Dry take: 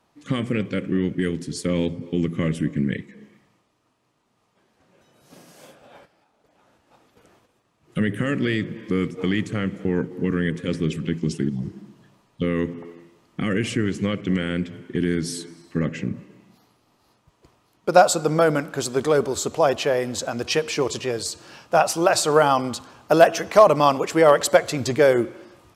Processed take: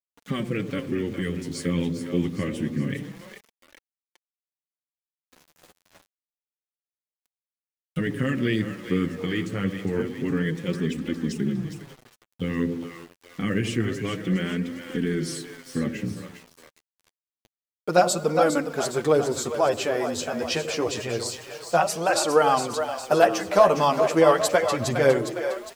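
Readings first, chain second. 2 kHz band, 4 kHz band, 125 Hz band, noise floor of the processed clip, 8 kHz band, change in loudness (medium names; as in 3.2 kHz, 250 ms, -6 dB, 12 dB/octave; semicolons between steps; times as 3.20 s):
-2.5 dB, -2.5 dB, -2.5 dB, under -85 dBFS, -2.5 dB, -2.5 dB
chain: on a send: two-band feedback delay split 470 Hz, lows 89 ms, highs 409 ms, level -8.5 dB; on the sum: small samples zeroed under -40.5 dBFS; flange 0.27 Hz, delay 3.3 ms, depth 9.5 ms, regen +7%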